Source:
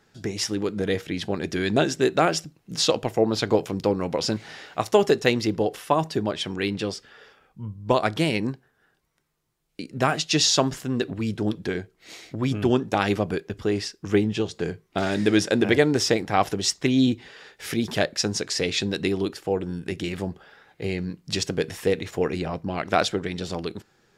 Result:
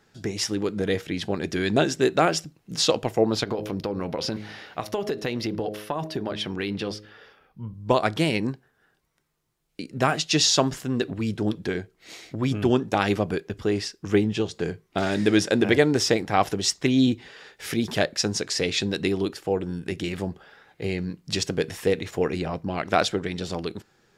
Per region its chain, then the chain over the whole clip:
0:03.43–0:07.74: parametric band 7,600 Hz −10 dB 0.53 octaves + hum removal 105.3 Hz, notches 6 + downward compressor, threshold −23 dBFS
whole clip: no processing

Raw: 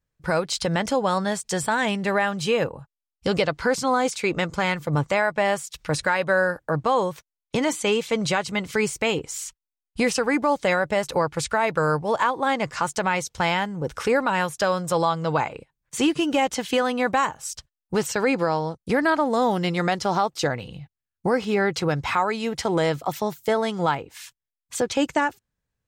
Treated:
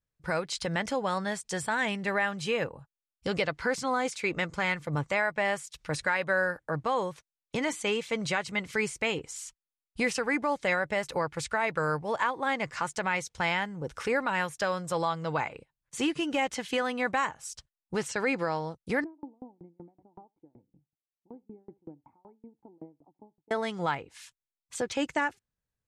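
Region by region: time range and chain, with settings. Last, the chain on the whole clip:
0:19.04–0:23.51: formant resonators in series u + single-tap delay 80 ms −16.5 dB + tremolo with a ramp in dB decaying 5.3 Hz, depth 33 dB
whole clip: dynamic equaliser 2,000 Hz, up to +6 dB, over −39 dBFS, Q 1.7; Butterworth low-pass 12,000 Hz 72 dB per octave; level −8 dB

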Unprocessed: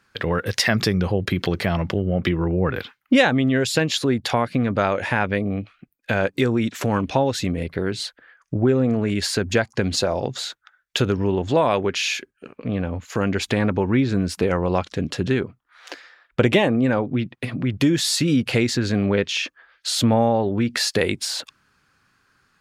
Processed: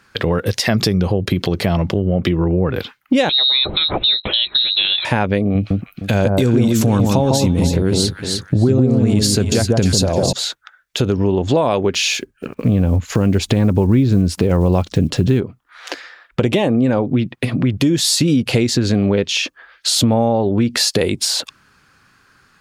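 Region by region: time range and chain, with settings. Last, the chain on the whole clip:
0:03.29–0:05.05: one scale factor per block 7 bits + notch comb filter 220 Hz + voice inversion scrambler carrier 4,000 Hz
0:05.55–0:10.33: bass and treble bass +6 dB, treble +9 dB + delay that swaps between a low-pass and a high-pass 153 ms, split 1,200 Hz, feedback 51%, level −2 dB
0:11.94–0:15.41: one scale factor per block 7 bits + low-shelf EQ 200 Hz +10.5 dB
whole clip: dynamic equaliser 1,700 Hz, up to −8 dB, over −39 dBFS, Q 1; downward compressor 3 to 1, threshold −22 dBFS; boost into a limiter +13 dB; level −3.5 dB

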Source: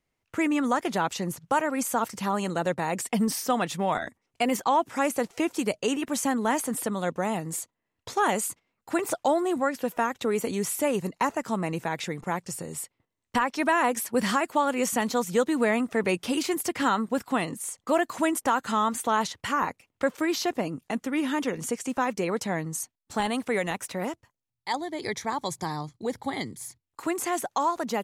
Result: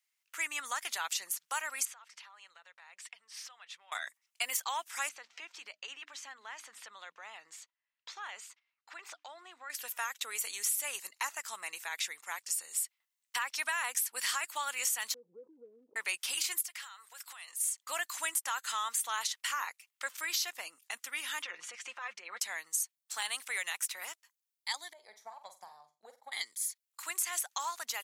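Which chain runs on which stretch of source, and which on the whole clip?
0:01.85–0:03.92: low-pass filter 3,300 Hz + downward compressor 5 to 1, threshold −41 dBFS + parametric band 260 Hz −11.5 dB 1.2 octaves
0:05.09–0:09.70: downward compressor 3 to 1, threshold −30 dBFS + high-frequency loss of the air 190 metres + mains-hum notches 60/120/180/240/300 Hz
0:15.14–0:15.96: Butterworth low-pass 500 Hz 96 dB per octave + background raised ahead of every attack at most 65 dB per second
0:16.61–0:17.57: high-pass filter 670 Hz + downward compressor 16 to 1, threshold −37 dBFS
0:21.42–0:22.40: low-pass filter 2,700 Hz + comb filter 5.7 ms, depth 63% + compressor whose output falls as the input rises −29 dBFS
0:24.93–0:26.32: drawn EQ curve 210 Hz 0 dB, 300 Hz −15 dB, 630 Hz 0 dB, 960 Hz −10 dB, 1,700 Hz −25 dB, 9,700 Hz −28 dB, 14,000 Hz −23 dB + transient designer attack +8 dB, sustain +1 dB + flutter between parallel walls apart 7.9 metres, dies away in 0.28 s
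whole clip: high-pass filter 1,400 Hz 12 dB per octave; spectral tilt +3 dB per octave; downward compressor, threshold −24 dBFS; level −4.5 dB

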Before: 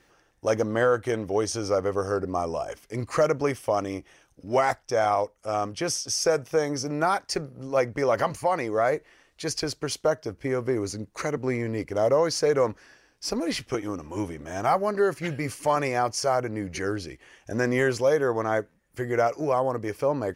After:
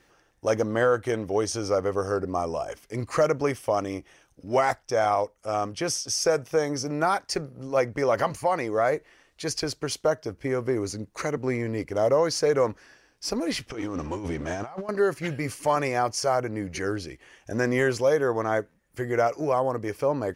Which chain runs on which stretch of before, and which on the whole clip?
0:13.70–0:14.89: mu-law and A-law mismatch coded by mu + low-pass filter 6,700 Hz + compressor whose output falls as the input rises −33 dBFS
whole clip: no processing

